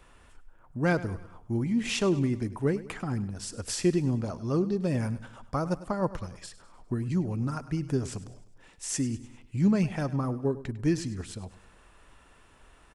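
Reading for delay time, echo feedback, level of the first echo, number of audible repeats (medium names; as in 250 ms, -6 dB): 101 ms, 47%, -16.0 dB, 3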